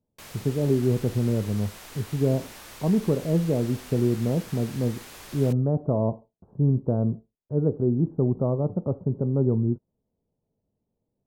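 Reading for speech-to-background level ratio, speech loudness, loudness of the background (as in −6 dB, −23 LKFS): 17.0 dB, −25.5 LKFS, −42.5 LKFS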